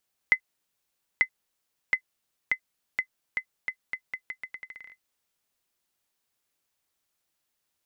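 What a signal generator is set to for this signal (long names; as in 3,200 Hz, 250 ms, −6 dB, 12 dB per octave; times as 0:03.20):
bouncing ball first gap 0.89 s, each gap 0.81, 2,040 Hz, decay 80 ms −8.5 dBFS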